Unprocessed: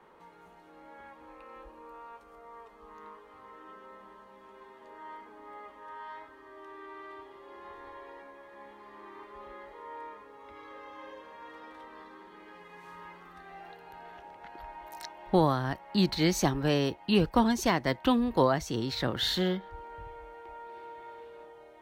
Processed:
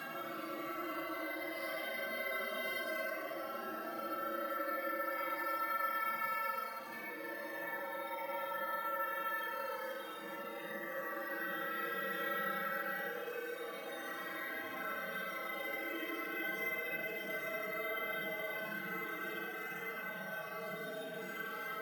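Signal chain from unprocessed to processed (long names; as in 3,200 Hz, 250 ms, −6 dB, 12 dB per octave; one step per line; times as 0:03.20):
partials spread apart or drawn together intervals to 127%
high-pass filter 130 Hz 24 dB per octave
extreme stretch with random phases 6.5×, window 0.05 s, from 0:01.15
bad sample-rate conversion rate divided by 3×, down filtered, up hold
multiband upward and downward compressor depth 40%
level +11 dB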